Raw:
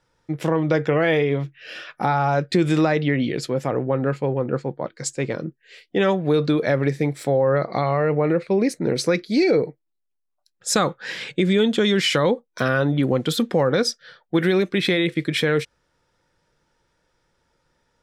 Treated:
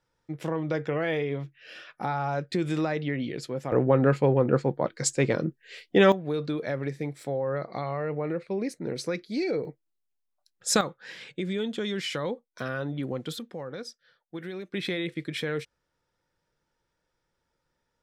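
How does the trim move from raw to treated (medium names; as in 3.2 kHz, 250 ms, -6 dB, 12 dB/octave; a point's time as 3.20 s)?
-9 dB
from 3.72 s +1 dB
from 6.12 s -10.5 dB
from 9.65 s -3 dB
from 10.81 s -12 dB
from 13.39 s -18.5 dB
from 14.73 s -10.5 dB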